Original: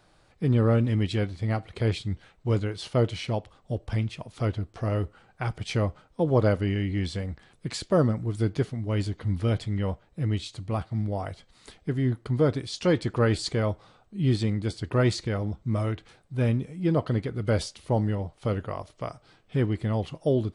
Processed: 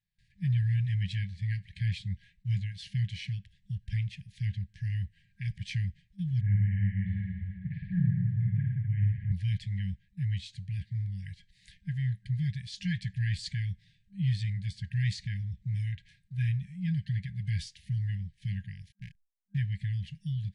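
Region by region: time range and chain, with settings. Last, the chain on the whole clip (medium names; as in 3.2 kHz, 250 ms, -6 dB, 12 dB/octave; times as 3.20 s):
6.41–9.32 s: Bessel low-pass 1.3 kHz, order 6 + reverse bouncing-ball echo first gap 50 ms, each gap 1.15×, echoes 8, each echo -2 dB
18.92–19.58 s: peaking EQ 490 Hz -7 dB 0.27 oct + hysteresis with a dead band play -33.5 dBFS
whole clip: gate with hold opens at -50 dBFS; FFT band-reject 200–1600 Hz; treble shelf 5.2 kHz -10.5 dB; trim -3 dB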